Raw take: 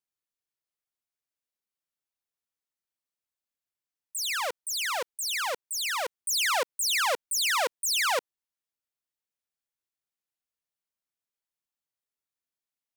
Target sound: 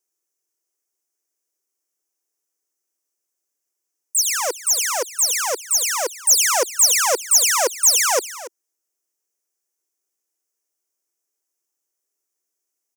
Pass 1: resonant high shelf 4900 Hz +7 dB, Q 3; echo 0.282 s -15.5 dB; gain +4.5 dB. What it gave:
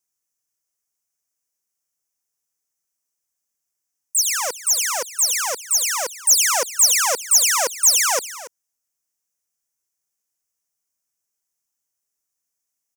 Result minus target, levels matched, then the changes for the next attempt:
500 Hz band -4.5 dB
add first: resonant high-pass 360 Hz, resonance Q 3.4

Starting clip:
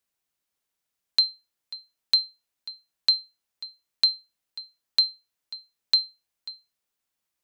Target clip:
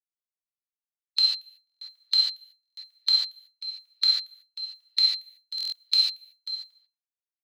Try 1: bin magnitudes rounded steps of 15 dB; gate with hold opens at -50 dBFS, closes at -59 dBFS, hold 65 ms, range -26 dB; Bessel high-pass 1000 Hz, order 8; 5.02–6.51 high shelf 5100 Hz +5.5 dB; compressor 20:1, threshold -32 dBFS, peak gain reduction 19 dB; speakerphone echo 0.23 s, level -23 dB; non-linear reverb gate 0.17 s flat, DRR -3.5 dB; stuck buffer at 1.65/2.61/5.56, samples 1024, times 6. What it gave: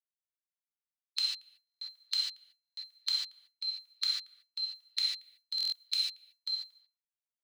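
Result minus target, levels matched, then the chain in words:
compressor: peak gain reduction +11 dB
bin magnitudes rounded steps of 15 dB; gate with hold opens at -50 dBFS, closes at -59 dBFS, hold 65 ms, range -26 dB; Bessel high-pass 1000 Hz, order 8; 5.02–6.51 high shelf 5100 Hz +5.5 dB; compressor 20:1, threshold -20.5 dBFS, peak gain reduction 8 dB; speakerphone echo 0.23 s, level -23 dB; non-linear reverb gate 0.17 s flat, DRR -3.5 dB; stuck buffer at 1.65/2.61/5.56, samples 1024, times 6

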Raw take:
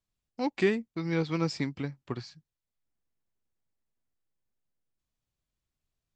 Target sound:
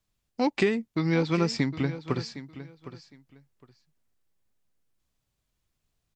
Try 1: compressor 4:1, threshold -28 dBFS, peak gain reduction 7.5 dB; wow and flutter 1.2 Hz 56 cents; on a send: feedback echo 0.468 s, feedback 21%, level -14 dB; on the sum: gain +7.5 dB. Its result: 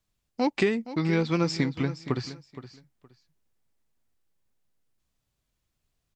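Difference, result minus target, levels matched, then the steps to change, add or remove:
echo 0.292 s early
change: feedback echo 0.76 s, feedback 21%, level -14 dB

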